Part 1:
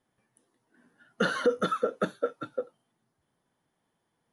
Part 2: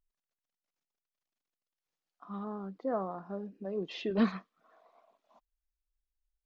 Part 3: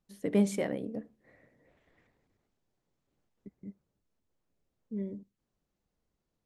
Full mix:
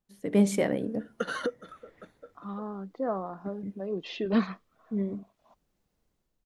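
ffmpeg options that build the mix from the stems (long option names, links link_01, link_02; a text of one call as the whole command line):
ffmpeg -i stem1.wav -i stem2.wav -i stem3.wav -filter_complex "[0:a]acompressor=threshold=-29dB:ratio=1.5,volume=0.5dB[link_01];[1:a]adelay=150,volume=2.5dB[link_02];[2:a]dynaudnorm=framelen=100:gausssize=7:maxgain=9.5dB,volume=-3.5dB,asplit=2[link_03][link_04];[link_04]apad=whole_len=190841[link_05];[link_01][link_05]sidechaingate=range=-19dB:threshold=-56dB:ratio=16:detection=peak[link_06];[link_06][link_02][link_03]amix=inputs=3:normalize=0" out.wav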